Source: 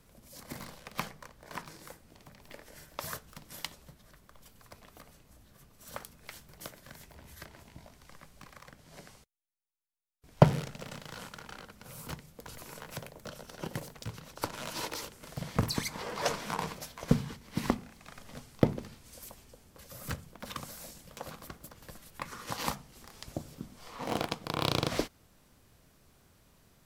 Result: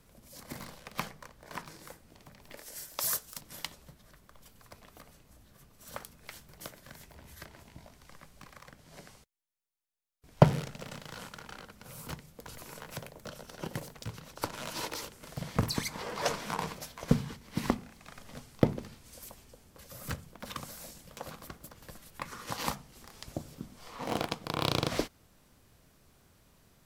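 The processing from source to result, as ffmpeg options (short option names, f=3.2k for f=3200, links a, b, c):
-filter_complex "[0:a]asettb=1/sr,asplit=3[a][b][c];[a]atrim=end=2.574[d];[b]atrim=start=2.57:end=3.41,asetpts=PTS-STARTPTS,afade=t=in:d=0.004:c=qsin,afade=t=out:st=0.836:d=0.004:c=qsin,bass=f=250:g=-6,treble=f=4k:g=13[e];[c]atrim=start=3.406[f];[d][e]acrossfade=d=0.004:c1=hsin:c2=qsin[g];[g][f]acrossfade=d=0.004:c1=qsin:c2=hsin"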